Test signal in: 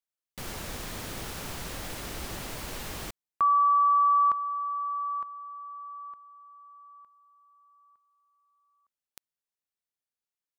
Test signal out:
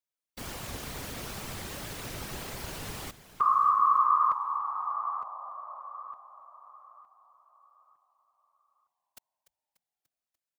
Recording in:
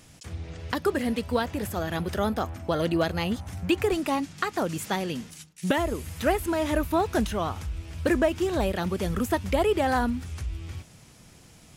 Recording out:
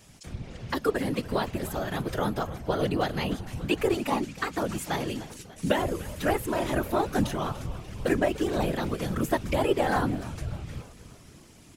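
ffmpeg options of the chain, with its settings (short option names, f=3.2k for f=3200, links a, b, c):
-filter_complex "[0:a]asplit=7[a][b][c][d][e][f][g];[b]adelay=293,afreqshift=-86,volume=-16dB[h];[c]adelay=586,afreqshift=-172,volume=-20.7dB[i];[d]adelay=879,afreqshift=-258,volume=-25.5dB[j];[e]adelay=1172,afreqshift=-344,volume=-30.2dB[k];[f]adelay=1465,afreqshift=-430,volume=-34.9dB[l];[g]adelay=1758,afreqshift=-516,volume=-39.7dB[m];[a][h][i][j][k][l][m]amix=inputs=7:normalize=0,afftfilt=real='hypot(re,im)*cos(2*PI*random(0))':imag='hypot(re,im)*sin(2*PI*random(1))':win_size=512:overlap=0.75,volume=4.5dB"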